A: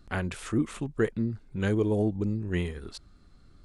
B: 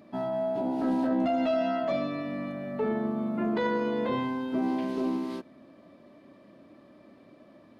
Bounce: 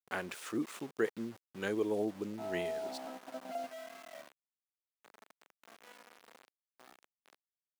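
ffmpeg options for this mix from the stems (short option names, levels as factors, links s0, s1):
-filter_complex "[0:a]volume=0.631,asplit=2[s0][s1];[1:a]lowpass=f=3000:w=0.5412,lowpass=f=3000:w=1.3066,aemphasis=mode=reproduction:type=75kf,aecho=1:1:1.4:0.85,adelay=2250,volume=0.237[s2];[s1]apad=whole_len=442975[s3];[s2][s3]sidechaingate=range=0.282:threshold=0.00141:ratio=16:detection=peak[s4];[s0][s4]amix=inputs=2:normalize=0,aeval=exprs='val(0)*gte(abs(val(0)),0.00501)':c=same,highpass=330"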